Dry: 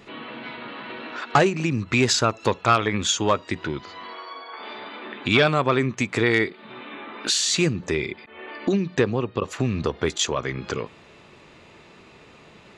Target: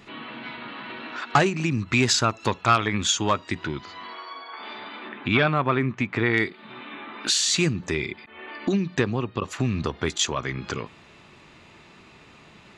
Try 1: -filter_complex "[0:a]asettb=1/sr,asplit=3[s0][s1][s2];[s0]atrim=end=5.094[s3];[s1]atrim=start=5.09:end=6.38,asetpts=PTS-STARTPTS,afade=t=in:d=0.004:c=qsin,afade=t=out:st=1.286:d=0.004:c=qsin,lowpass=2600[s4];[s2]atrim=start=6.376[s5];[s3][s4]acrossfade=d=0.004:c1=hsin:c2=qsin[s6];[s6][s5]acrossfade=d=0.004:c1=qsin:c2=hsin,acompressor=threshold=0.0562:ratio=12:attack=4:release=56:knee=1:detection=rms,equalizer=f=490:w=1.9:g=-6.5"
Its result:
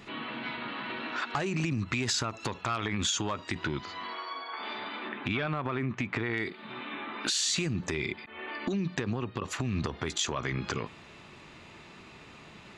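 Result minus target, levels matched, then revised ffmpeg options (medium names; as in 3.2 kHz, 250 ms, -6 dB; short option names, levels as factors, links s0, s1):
compression: peak gain reduction +15 dB
-filter_complex "[0:a]asettb=1/sr,asplit=3[s0][s1][s2];[s0]atrim=end=5.094[s3];[s1]atrim=start=5.09:end=6.38,asetpts=PTS-STARTPTS,afade=t=in:d=0.004:c=qsin,afade=t=out:st=1.286:d=0.004:c=qsin,lowpass=2600[s4];[s2]atrim=start=6.376[s5];[s3][s4]acrossfade=d=0.004:c1=hsin:c2=qsin[s6];[s6][s5]acrossfade=d=0.004:c1=qsin:c2=hsin,equalizer=f=490:w=1.9:g=-6.5"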